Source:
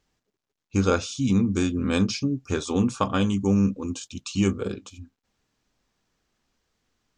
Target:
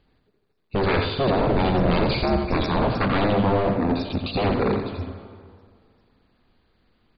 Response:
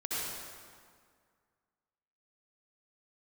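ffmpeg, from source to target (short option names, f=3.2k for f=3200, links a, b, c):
-filter_complex "[0:a]tiltshelf=f=780:g=3.5,alimiter=limit=-15dB:level=0:latency=1:release=11,aeval=exprs='0.0596*(abs(mod(val(0)/0.0596+3,4)-2)-1)':c=same,asplit=3[a][b][c];[a]afade=t=out:st=1.36:d=0.02[d];[b]afreqshift=-72,afade=t=in:st=1.36:d=0.02,afade=t=out:st=2.87:d=0.02[e];[c]afade=t=in:st=2.87:d=0.02[f];[d][e][f]amix=inputs=3:normalize=0,aecho=1:1:85:0.531,asplit=2[g][h];[1:a]atrim=start_sample=2205[i];[h][i]afir=irnorm=-1:irlink=0,volume=-13dB[j];[g][j]amix=inputs=2:normalize=0,volume=7dB" -ar 44100 -c:a mp2 -b:a 32k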